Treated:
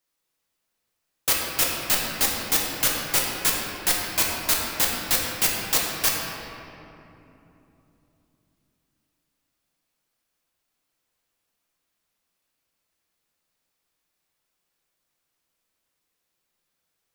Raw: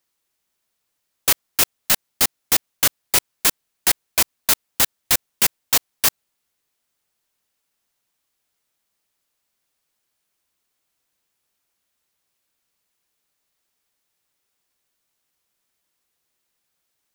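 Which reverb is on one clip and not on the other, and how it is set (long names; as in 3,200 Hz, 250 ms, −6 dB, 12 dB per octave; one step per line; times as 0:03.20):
rectangular room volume 140 cubic metres, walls hard, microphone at 0.58 metres
level −5.5 dB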